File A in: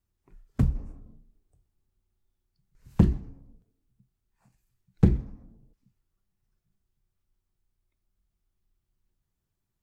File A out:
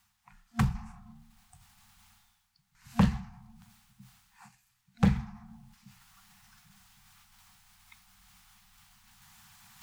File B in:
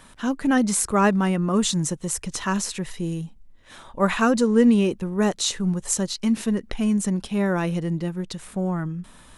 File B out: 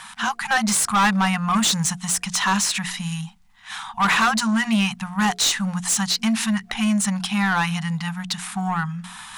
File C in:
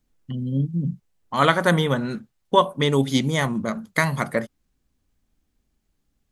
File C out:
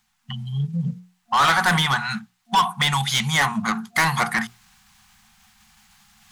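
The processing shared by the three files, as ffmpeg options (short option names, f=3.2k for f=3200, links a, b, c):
-filter_complex "[0:a]areverse,acompressor=mode=upward:threshold=-42dB:ratio=2.5,areverse,afftfilt=real='re*(1-between(b*sr/4096,230,700))':imag='im*(1-between(b*sr/4096,230,700))':win_size=4096:overlap=0.75,asplit=2[a][b];[b]highpass=f=720:p=1,volume=27dB,asoftclip=type=tanh:threshold=-2dB[c];[a][c]amix=inputs=2:normalize=0,lowpass=f=6.7k:p=1,volume=-6dB,bandreject=f=60:t=h:w=6,bandreject=f=120:t=h:w=6,bandreject=f=180:t=h:w=6,bandreject=f=240:t=h:w=6,bandreject=f=300:t=h:w=6,bandreject=f=360:t=h:w=6,bandreject=f=420:t=h:w=6,bandreject=f=480:t=h:w=6,volume=-7dB"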